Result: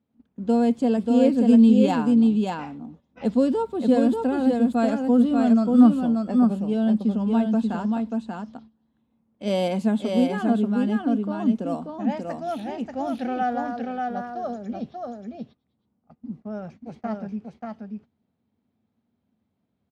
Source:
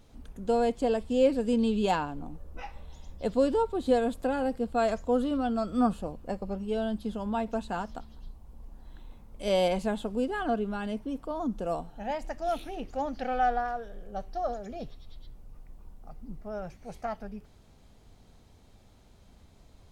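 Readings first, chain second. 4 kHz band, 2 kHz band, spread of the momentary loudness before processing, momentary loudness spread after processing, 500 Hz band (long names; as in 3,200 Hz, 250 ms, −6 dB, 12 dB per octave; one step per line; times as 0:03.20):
+1.5 dB, +1.5 dB, 17 LU, 18 LU, +2.5 dB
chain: low-pass that shuts in the quiet parts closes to 2,700 Hz, open at −25 dBFS
high-pass filter 87 Hz 24 dB per octave
noise gate −48 dBFS, range −20 dB
parametric band 230 Hz +13 dB 0.61 octaves
single-tap delay 586 ms −3.5 dB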